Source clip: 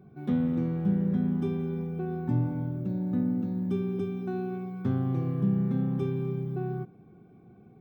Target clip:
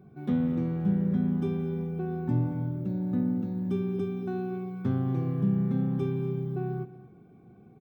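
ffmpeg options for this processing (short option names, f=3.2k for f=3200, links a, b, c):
-af "aecho=1:1:232:0.141"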